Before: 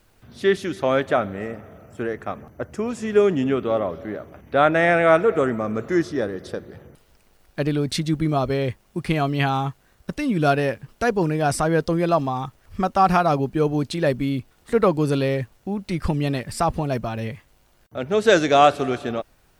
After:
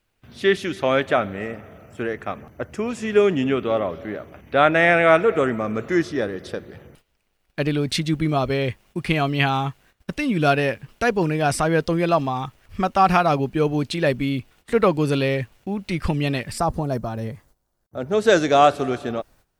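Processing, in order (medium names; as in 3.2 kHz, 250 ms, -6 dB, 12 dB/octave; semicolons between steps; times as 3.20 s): gate -51 dBFS, range -14 dB; peaking EQ 2.6 kHz +6 dB 1.1 oct, from 16.58 s -10.5 dB, from 18.13 s -2.5 dB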